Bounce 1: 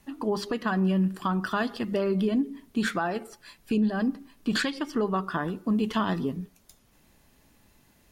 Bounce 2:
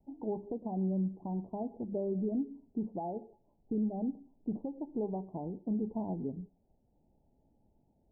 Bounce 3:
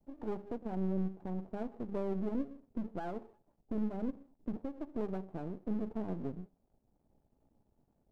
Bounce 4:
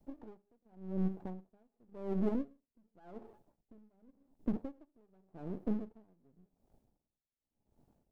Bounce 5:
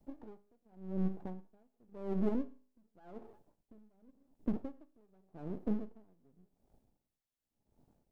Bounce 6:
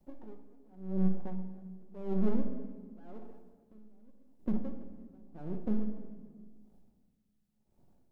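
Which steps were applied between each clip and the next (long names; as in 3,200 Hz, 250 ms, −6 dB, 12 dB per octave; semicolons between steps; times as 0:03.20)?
Butterworth low-pass 880 Hz 96 dB per octave; level −8 dB
gain on one half-wave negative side −12 dB; level +1 dB
tremolo with a sine in dB 0.89 Hz, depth 36 dB; level +4.5 dB
tuned comb filter 51 Hz, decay 0.47 s, harmonics all, mix 40%; level +3 dB
rectangular room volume 1,700 cubic metres, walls mixed, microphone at 1 metre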